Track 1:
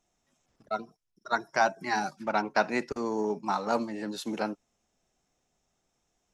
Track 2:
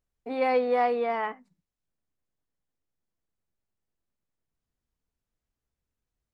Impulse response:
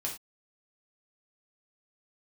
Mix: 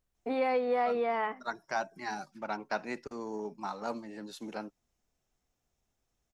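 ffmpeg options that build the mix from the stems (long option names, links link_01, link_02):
-filter_complex "[0:a]adelay=150,volume=-8.5dB[link_01];[1:a]acompressor=threshold=-32dB:ratio=2.5,volume=2.5dB[link_02];[link_01][link_02]amix=inputs=2:normalize=0"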